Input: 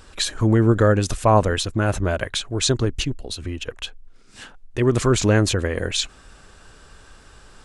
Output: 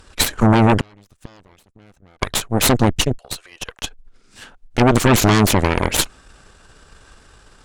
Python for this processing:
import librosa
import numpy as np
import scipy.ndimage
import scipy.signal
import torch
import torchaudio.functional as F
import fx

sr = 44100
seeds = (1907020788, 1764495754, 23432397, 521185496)

y = fx.cheby2_highpass(x, sr, hz=230.0, order=4, stop_db=50, at=(3.18, 3.84))
y = fx.cheby_harmonics(y, sr, harmonics=(8,), levels_db=(-7,), full_scale_db=-3.5)
y = fx.gate_flip(y, sr, shuts_db=-10.0, range_db=-35, at=(0.8, 2.22))